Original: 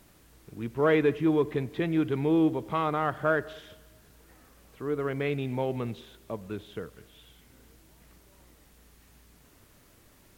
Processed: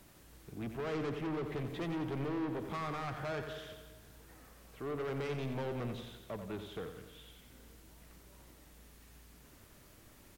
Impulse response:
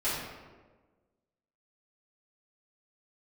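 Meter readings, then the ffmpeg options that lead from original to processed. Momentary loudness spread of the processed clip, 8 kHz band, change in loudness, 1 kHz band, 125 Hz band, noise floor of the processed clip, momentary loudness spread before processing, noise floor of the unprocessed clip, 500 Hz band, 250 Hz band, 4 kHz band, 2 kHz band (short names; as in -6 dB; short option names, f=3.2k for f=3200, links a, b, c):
21 LU, n/a, -11.5 dB, -10.0 dB, -7.5 dB, -60 dBFS, 17 LU, -59 dBFS, -11.5 dB, -11.5 dB, -4.5 dB, -11.0 dB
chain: -filter_complex "[0:a]acrossover=split=270[a][b];[b]acompressor=threshold=-27dB:ratio=6[c];[a][c]amix=inputs=2:normalize=0,asoftclip=type=tanh:threshold=-34dB,asplit=2[d][e];[e]aecho=0:1:89|178|267|356|445|534|623:0.376|0.207|0.114|0.0625|0.0344|0.0189|0.0104[f];[d][f]amix=inputs=2:normalize=0,volume=-1.5dB"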